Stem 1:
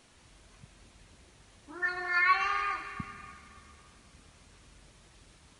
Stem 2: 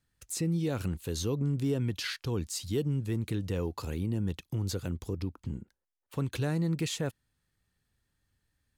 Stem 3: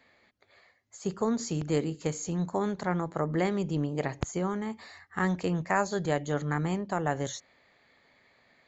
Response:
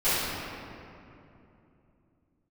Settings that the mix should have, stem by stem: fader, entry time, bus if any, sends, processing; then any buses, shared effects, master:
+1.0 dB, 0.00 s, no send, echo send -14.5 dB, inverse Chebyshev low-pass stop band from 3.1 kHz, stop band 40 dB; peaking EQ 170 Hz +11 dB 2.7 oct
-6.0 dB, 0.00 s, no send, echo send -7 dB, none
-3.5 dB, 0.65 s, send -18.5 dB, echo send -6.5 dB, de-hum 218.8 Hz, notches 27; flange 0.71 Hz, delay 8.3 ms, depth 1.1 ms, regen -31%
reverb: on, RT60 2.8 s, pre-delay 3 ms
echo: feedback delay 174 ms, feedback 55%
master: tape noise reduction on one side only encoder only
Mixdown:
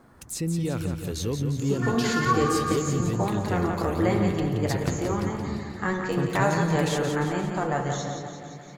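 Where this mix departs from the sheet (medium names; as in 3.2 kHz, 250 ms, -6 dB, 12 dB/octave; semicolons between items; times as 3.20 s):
stem 2 -6.0 dB -> +2.0 dB; stem 3 -3.5 dB -> +4.5 dB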